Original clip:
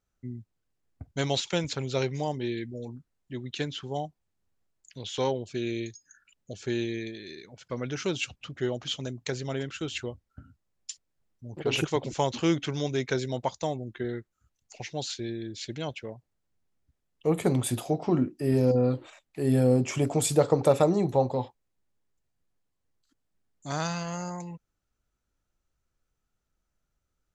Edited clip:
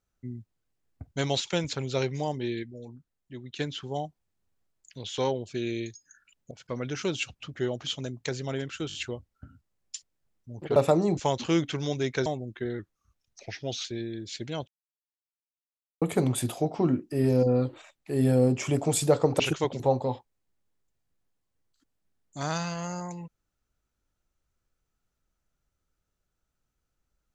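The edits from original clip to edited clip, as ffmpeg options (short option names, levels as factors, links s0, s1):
-filter_complex "[0:a]asplit=16[s0][s1][s2][s3][s4][s5][s6][s7][s8][s9][s10][s11][s12][s13][s14][s15];[s0]atrim=end=2.632[s16];[s1]atrim=start=2.628:end=3.592,asetpts=PTS-STARTPTS,volume=0.562[s17];[s2]atrim=start=3.588:end=6.512[s18];[s3]atrim=start=7.518:end=9.912[s19];[s4]atrim=start=9.888:end=9.912[s20];[s5]atrim=start=9.888:end=9.912[s21];[s6]atrim=start=9.888:end=11.712[s22];[s7]atrim=start=20.678:end=21.092[s23];[s8]atrim=start=12.108:end=13.202[s24];[s9]atrim=start=13.648:end=14.184[s25];[s10]atrim=start=14.18:end=15.13,asetpts=PTS-STARTPTS,asetrate=39690,aresample=44100[s26];[s11]atrim=start=15.126:end=15.96,asetpts=PTS-STARTPTS,afade=t=out:st=0.83:d=0.004:c=hsin[s27];[s12]atrim=start=15.96:end=17.3,asetpts=PTS-STARTPTS,volume=0[s28];[s13]atrim=start=17.3:end=20.682,asetpts=PTS-STARTPTS,afade=t=in:d=0.004:c=hsin[s29];[s14]atrim=start=11.708:end=12.112[s30];[s15]atrim=start=21.088[s31];[s16][s17]acrossfade=d=0.004:c1=hsin:c2=hsin[s32];[s32][s18]acrossfade=d=0.004:c1=hsin:c2=hsin[s33];[s33][s19]acrossfade=d=0.004:c1=hsin:c2=hsin[s34];[s34][s20]acrossfade=d=0.004:c1=hsin:c2=hsin[s35];[s35][s21]acrossfade=d=0.004:c1=hsin:c2=hsin[s36];[s36][s22]acrossfade=d=0.004:c1=hsin:c2=hsin[s37];[s37][s23]acrossfade=d=0.004:c1=hsin:c2=hsin[s38];[s38][s24]acrossfade=d=0.004:c1=hsin:c2=hsin[s39];[s39][s25]acrossfade=d=0.004:c1=hsin:c2=hsin[s40];[s40][s26]acrossfade=d=0.004:c1=hsin:c2=hsin[s41];[s27][s28][s29]concat=n=3:v=0:a=1[s42];[s41][s42]acrossfade=d=0.004:c1=hsin:c2=hsin[s43];[s43][s30]acrossfade=d=0.004:c1=hsin:c2=hsin[s44];[s44][s31]acrossfade=d=0.004:c1=hsin:c2=hsin"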